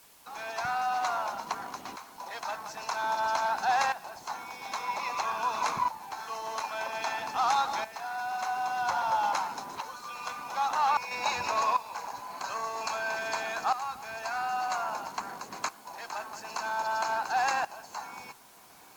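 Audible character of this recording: tremolo saw up 0.51 Hz, depth 80%; a quantiser's noise floor 10-bit, dither triangular; AAC

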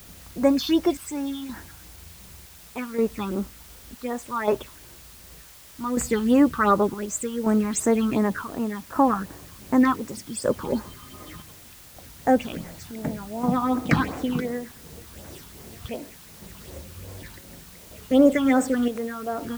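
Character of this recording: phasing stages 6, 2.7 Hz, lowest notch 520–3800 Hz; chopped level 0.67 Hz, depth 60%, duty 65%; a quantiser's noise floor 8-bit, dither triangular

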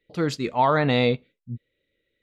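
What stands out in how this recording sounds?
noise floor -79 dBFS; spectral tilt -4.5 dB/oct

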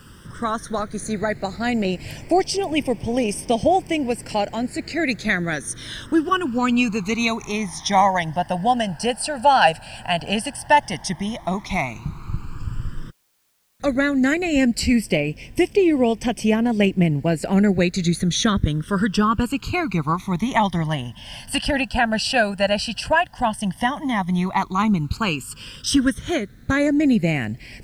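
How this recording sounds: phasing stages 12, 0.078 Hz, lowest notch 370–1300 Hz; a quantiser's noise floor 12-bit, dither triangular

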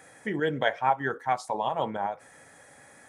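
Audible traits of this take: noise floor -54 dBFS; spectral tilt -3.5 dB/oct

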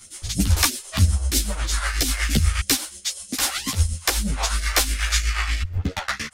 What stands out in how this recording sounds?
phasing stages 2, 3.1 Hz, lowest notch 180–1000 Hz; tremolo triangle 8.2 Hz, depth 70%; a shimmering, thickened sound

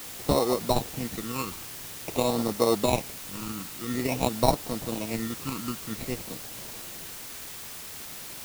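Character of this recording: aliases and images of a low sample rate 1600 Hz, jitter 0%; tremolo saw up 9.1 Hz, depth 40%; phasing stages 12, 0.49 Hz, lowest notch 600–2600 Hz; a quantiser's noise floor 8-bit, dither triangular

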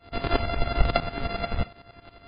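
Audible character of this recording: a buzz of ramps at a fixed pitch in blocks of 64 samples; tremolo saw up 11 Hz, depth 90%; MP3

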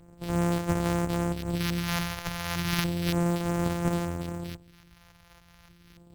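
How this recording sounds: a buzz of ramps at a fixed pitch in blocks of 256 samples; phasing stages 2, 0.33 Hz, lowest notch 300–5000 Hz; aliases and images of a low sample rate 8100 Hz, jitter 0%; MP3

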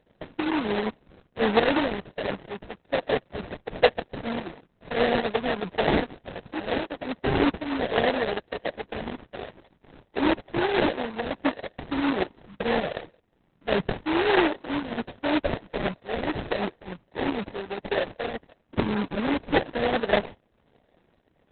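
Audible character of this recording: phasing stages 2, 1.4 Hz, lowest notch 770–2400 Hz; aliases and images of a low sample rate 1200 Hz, jitter 20%; tremolo saw up 2.5 Hz, depth 45%; Opus

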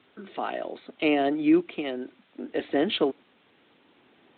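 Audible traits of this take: tremolo saw up 0.62 Hz, depth 55%; a quantiser's noise floor 10-bit, dither triangular; Speex

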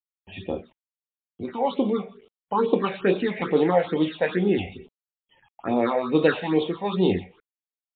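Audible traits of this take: a quantiser's noise floor 10-bit, dither none; phasing stages 6, 2.3 Hz, lowest notch 320–1700 Hz; MP3

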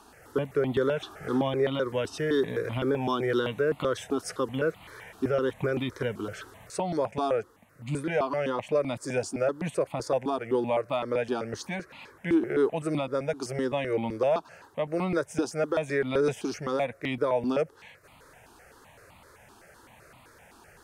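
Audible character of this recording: notches that jump at a steady rate 7.8 Hz 550–1600 Hz

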